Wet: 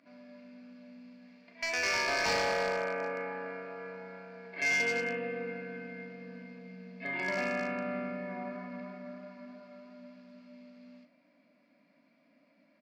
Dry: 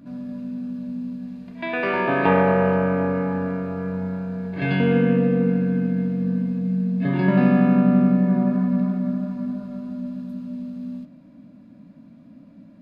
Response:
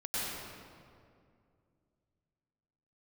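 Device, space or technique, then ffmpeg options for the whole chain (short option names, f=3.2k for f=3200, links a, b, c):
megaphone: -filter_complex "[0:a]highpass=690,lowpass=3k,equalizer=f=2.1k:t=o:w=0.41:g=11,asoftclip=type=hard:threshold=-20dB,superequalizer=9b=0.631:10b=0.631:11b=0.631:14b=3.55:15b=2.24,asplit=2[a][b];[b]adelay=37,volume=-12dB[c];[a][c]amix=inputs=2:normalize=0,volume=-5dB"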